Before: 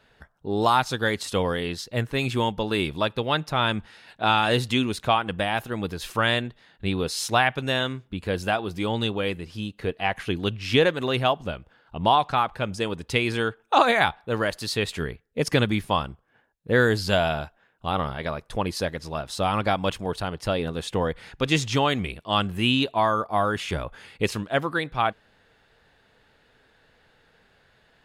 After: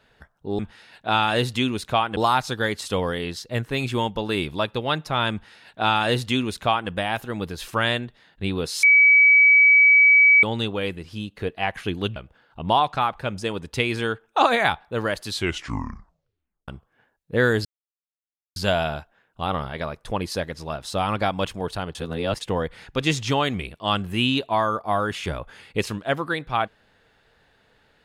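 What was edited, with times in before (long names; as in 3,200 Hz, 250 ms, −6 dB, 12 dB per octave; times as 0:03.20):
0:03.74–0:05.32: duplicate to 0:00.59
0:07.25–0:08.85: beep over 2,280 Hz −10.5 dBFS
0:10.58–0:11.52: remove
0:14.59: tape stop 1.45 s
0:17.01: splice in silence 0.91 s
0:20.40–0:20.86: reverse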